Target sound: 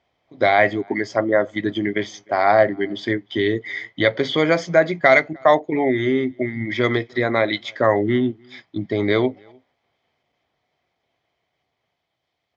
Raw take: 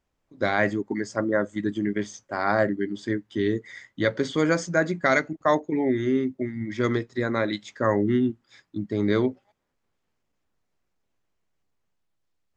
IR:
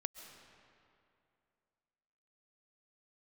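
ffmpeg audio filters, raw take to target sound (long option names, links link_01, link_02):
-filter_complex "[0:a]highpass=100,equalizer=frequency=200:width_type=q:width=4:gain=-8,equalizer=frequency=290:width_type=q:width=4:gain=-3,equalizer=frequency=700:width_type=q:width=4:gain=9,equalizer=frequency=1500:width_type=q:width=4:gain=-4,equalizer=frequency=2100:width_type=q:width=4:gain=7,equalizer=frequency=3100:width_type=q:width=4:gain=9,lowpass=frequency=5200:width=0.5412,lowpass=frequency=5200:width=1.3066,asplit=2[link_01][link_02];[link_02]acompressor=threshold=-29dB:ratio=6,volume=1dB[link_03];[link_01][link_03]amix=inputs=2:normalize=0,bandreject=frequency=2800:width=7.8,asplit=2[link_04][link_05];[link_05]adelay=303.2,volume=-30dB,highshelf=frequency=4000:gain=-6.82[link_06];[link_04][link_06]amix=inputs=2:normalize=0,volume=2dB"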